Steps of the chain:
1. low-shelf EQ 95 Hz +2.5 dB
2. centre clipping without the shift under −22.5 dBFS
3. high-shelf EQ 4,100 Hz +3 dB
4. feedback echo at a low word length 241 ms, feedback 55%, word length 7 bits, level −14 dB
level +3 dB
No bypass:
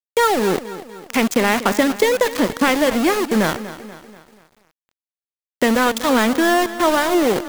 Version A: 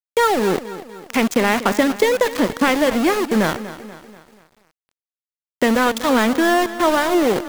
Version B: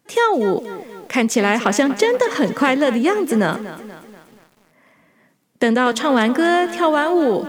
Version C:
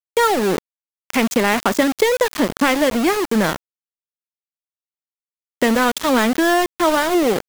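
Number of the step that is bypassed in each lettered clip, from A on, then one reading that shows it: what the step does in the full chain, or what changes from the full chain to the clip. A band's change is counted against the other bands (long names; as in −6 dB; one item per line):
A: 3, 8 kHz band −2.0 dB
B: 2, distortion level −10 dB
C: 4, change in momentary loudness spread −3 LU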